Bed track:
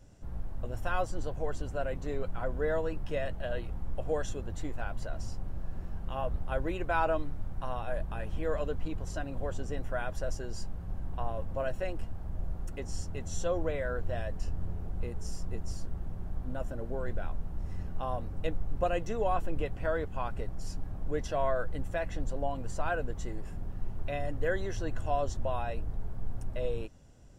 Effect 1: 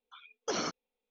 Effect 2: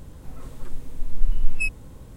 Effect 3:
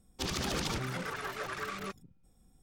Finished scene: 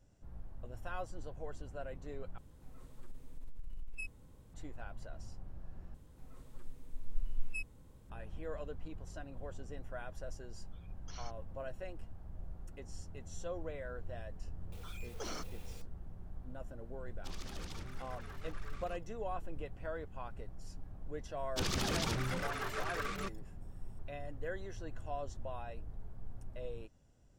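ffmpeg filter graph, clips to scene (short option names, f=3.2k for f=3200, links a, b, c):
-filter_complex "[2:a]asplit=2[a][b];[1:a]asplit=2[c][d];[3:a]asplit=2[e][f];[0:a]volume=-10.5dB[g];[a]acompressor=threshold=-22dB:ratio=10:attack=6.6:release=33:knee=1:detection=peak[h];[c]highpass=1.4k[i];[d]aeval=exprs='val(0)+0.5*0.0133*sgn(val(0))':c=same[j];[f]equalizer=f=95:t=o:w=0.77:g=4.5[k];[g]asplit=3[l][m][n];[l]atrim=end=2.384[o];[h]atrim=end=2.16,asetpts=PTS-STARTPTS,volume=-15.5dB[p];[m]atrim=start=4.536:end=5.944[q];[b]atrim=end=2.16,asetpts=PTS-STARTPTS,volume=-15.5dB[r];[n]atrim=start=8.096[s];[i]atrim=end=1.1,asetpts=PTS-STARTPTS,volume=-16.5dB,afade=t=in:d=0.004:c=hsin,afade=t=out:st=1.096:d=0.004:c=hsin,adelay=10600[t];[j]atrim=end=1.1,asetpts=PTS-STARTPTS,volume=-12dB,afade=t=in:d=0.004:c=hsin,afade=t=out:st=1.096:d=0.004:c=hsin,adelay=14720[u];[e]atrim=end=2.62,asetpts=PTS-STARTPTS,volume=-15dB,afade=t=in:d=0.004:c=hsin,afade=t=out:st=2.616:d=0.004:c=hsin,adelay=17050[v];[k]atrim=end=2.62,asetpts=PTS-STARTPTS,volume=-1.5dB,afade=t=in:d=0.004:c=hsin,afade=t=out:st=2.616:d=0.004:c=hsin,adelay=21370[w];[o][p]acrossfade=d=0.004:c1=hsin:c2=hsin[x];[x][q]acrossfade=d=0.004:c1=hsin:c2=hsin[y];[y][r]acrossfade=d=0.004:c1=hsin:c2=hsin[z];[z][s]acrossfade=d=0.004:c1=hsin:c2=hsin[aa];[aa][t][u][v][w]amix=inputs=5:normalize=0"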